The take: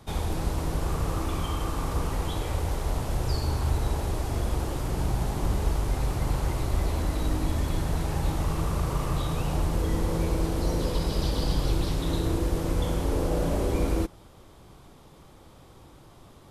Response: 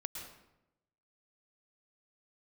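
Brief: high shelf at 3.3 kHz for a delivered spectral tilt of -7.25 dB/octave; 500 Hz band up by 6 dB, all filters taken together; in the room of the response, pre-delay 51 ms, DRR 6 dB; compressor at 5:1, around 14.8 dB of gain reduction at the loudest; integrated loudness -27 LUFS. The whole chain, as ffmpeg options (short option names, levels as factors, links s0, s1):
-filter_complex "[0:a]equalizer=f=500:t=o:g=7.5,highshelf=f=3300:g=-7.5,acompressor=threshold=0.0141:ratio=5,asplit=2[s0][s1];[1:a]atrim=start_sample=2205,adelay=51[s2];[s1][s2]afir=irnorm=-1:irlink=0,volume=0.562[s3];[s0][s3]amix=inputs=2:normalize=0,volume=4.47"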